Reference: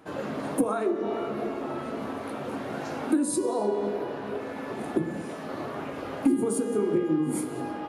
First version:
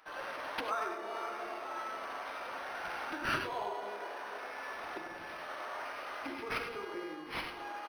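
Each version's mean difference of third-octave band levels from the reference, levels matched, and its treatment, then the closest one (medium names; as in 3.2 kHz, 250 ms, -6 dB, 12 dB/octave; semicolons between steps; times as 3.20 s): 10.0 dB: high-pass 1.2 kHz 12 dB/octave; speakerphone echo 100 ms, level -6 dB; gated-style reverb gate 120 ms rising, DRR 6 dB; decimation joined by straight lines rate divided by 6×; trim +1 dB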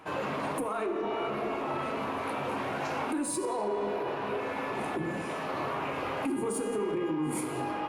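4.0 dB: in parallel at -4.5 dB: saturation -29.5 dBFS, distortion -7 dB; on the sum: fifteen-band graphic EQ 250 Hz -5 dB, 1 kHz +7 dB, 2.5 kHz +8 dB; gated-style reverb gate 260 ms falling, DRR 10.5 dB; peak limiter -20.5 dBFS, peak gain reduction 10.5 dB; trim -3.5 dB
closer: second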